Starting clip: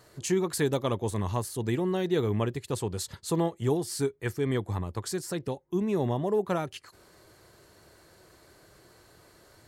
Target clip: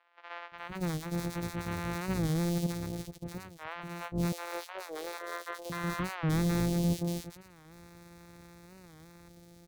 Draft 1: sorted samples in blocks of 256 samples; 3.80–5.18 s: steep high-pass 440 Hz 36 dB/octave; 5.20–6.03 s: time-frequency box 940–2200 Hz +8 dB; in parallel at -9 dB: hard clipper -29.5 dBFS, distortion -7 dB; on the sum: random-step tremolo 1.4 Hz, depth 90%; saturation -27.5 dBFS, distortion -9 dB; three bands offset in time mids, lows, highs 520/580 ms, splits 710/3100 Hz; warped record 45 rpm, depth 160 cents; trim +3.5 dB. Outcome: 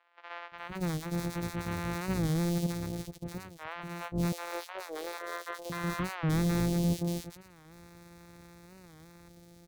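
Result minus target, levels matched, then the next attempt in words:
hard clipper: distortion -4 dB
sorted samples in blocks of 256 samples; 3.80–5.18 s: steep high-pass 440 Hz 36 dB/octave; 5.20–6.03 s: time-frequency box 940–2200 Hz +8 dB; in parallel at -9 dB: hard clipper -38.5 dBFS, distortion -3 dB; on the sum: random-step tremolo 1.4 Hz, depth 90%; saturation -27.5 dBFS, distortion -9 dB; three bands offset in time mids, lows, highs 520/580 ms, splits 710/3100 Hz; warped record 45 rpm, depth 160 cents; trim +3.5 dB

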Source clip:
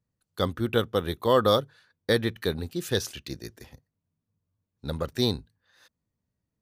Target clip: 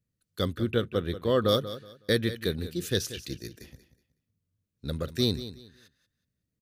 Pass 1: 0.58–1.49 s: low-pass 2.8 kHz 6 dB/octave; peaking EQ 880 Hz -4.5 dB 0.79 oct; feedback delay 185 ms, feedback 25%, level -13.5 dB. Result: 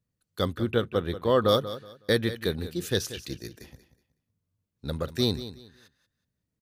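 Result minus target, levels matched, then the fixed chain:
1 kHz band +3.5 dB
0.58–1.49 s: low-pass 2.8 kHz 6 dB/octave; peaking EQ 880 Hz -14 dB 0.79 oct; feedback delay 185 ms, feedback 25%, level -13.5 dB

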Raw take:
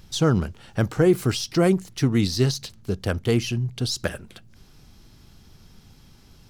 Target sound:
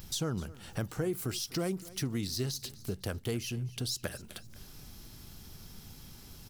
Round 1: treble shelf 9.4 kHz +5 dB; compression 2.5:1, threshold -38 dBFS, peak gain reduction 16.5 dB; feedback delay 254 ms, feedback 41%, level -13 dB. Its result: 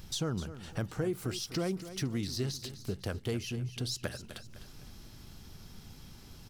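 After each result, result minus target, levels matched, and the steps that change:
echo-to-direct +6.5 dB; 8 kHz band -2.5 dB
change: feedback delay 254 ms, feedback 41%, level -19.5 dB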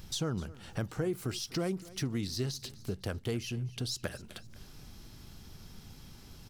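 8 kHz band -2.5 dB
change: treble shelf 9.4 kHz +17 dB

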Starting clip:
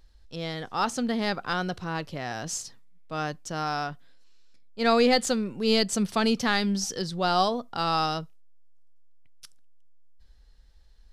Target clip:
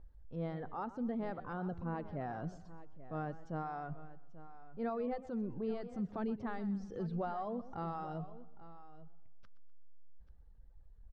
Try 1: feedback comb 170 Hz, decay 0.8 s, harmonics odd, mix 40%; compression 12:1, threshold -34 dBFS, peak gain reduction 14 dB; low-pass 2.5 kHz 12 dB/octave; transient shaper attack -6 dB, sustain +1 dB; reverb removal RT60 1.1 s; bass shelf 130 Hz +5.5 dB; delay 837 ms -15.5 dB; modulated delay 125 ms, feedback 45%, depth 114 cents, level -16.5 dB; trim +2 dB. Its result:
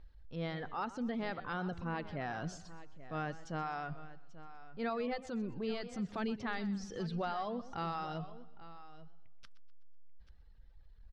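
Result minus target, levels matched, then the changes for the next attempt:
2 kHz band +7.5 dB
change: low-pass 980 Hz 12 dB/octave

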